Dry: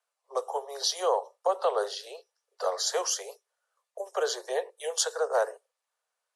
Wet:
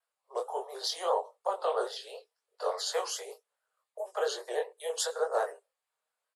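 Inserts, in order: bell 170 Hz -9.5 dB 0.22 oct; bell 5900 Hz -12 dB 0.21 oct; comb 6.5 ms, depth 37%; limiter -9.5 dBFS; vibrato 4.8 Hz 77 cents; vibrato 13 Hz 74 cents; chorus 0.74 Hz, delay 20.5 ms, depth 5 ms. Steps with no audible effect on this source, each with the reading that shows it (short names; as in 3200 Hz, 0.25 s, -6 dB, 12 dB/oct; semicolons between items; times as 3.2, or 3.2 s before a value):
bell 170 Hz: input band starts at 340 Hz; limiter -9.5 dBFS: input peak -13.0 dBFS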